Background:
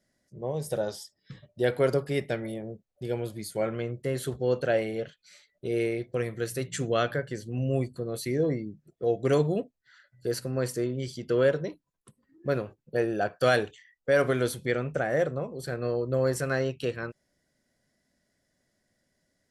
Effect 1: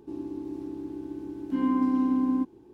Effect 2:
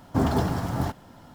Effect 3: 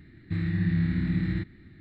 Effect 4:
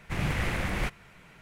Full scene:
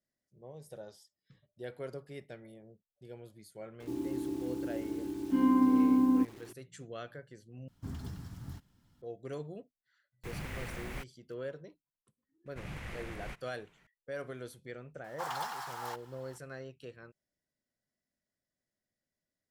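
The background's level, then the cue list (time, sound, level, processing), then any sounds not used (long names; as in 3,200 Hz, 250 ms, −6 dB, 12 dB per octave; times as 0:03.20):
background −17.5 dB
0:03.80: mix in 1 −0.5 dB + bit reduction 9 bits
0:07.68: overwrite with 2 −1.5 dB + guitar amp tone stack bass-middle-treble 6-0-2
0:10.14: mix in 4 −12 dB + bit reduction 7 bits
0:12.46: mix in 4 −14 dB
0:15.04: mix in 2 −5 dB + Butterworth high-pass 760 Hz 72 dB per octave
not used: 3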